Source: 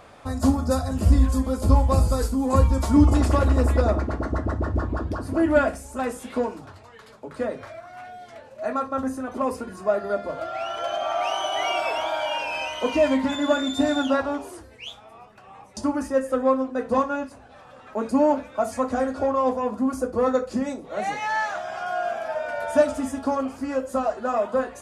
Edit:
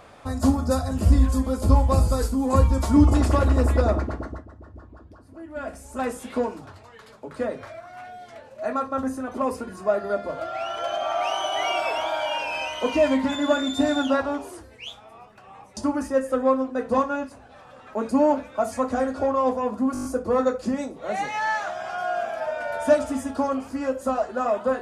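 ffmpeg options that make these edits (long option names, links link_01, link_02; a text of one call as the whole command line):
ffmpeg -i in.wav -filter_complex "[0:a]asplit=9[link_01][link_02][link_03][link_04][link_05][link_06][link_07][link_08][link_09];[link_01]atrim=end=4.46,asetpts=PTS-STARTPTS,afade=type=out:start_time=3.98:duration=0.48:silence=0.105925[link_10];[link_02]atrim=start=4.46:end=5.54,asetpts=PTS-STARTPTS,volume=-19.5dB[link_11];[link_03]atrim=start=5.54:end=19.952,asetpts=PTS-STARTPTS,afade=type=in:duration=0.48:silence=0.105925[link_12];[link_04]atrim=start=19.928:end=19.952[link_13];[link_05]atrim=start=19.928:end=19.952[link_14];[link_06]atrim=start=19.928:end=19.952[link_15];[link_07]atrim=start=19.928:end=19.952[link_16];[link_08]atrim=start=19.928:end=19.952[link_17];[link_09]atrim=start=19.928[link_18];[link_10][link_11][link_12]concat=n=3:v=0:a=1[link_19];[link_19][link_13]acrossfade=duration=0.004:curve1=hsin:curve2=hsin[link_20];[link_20][link_14]acrossfade=duration=0.004:curve1=hsin:curve2=hsin[link_21];[link_21][link_15]acrossfade=duration=0.004:curve1=hsin:curve2=hsin[link_22];[link_22][link_16]acrossfade=duration=0.004:curve1=hsin:curve2=hsin[link_23];[link_23][link_17]acrossfade=duration=0.004:curve1=hsin:curve2=hsin[link_24];[link_24][link_18]acrossfade=duration=0.004:curve1=hsin:curve2=hsin" out.wav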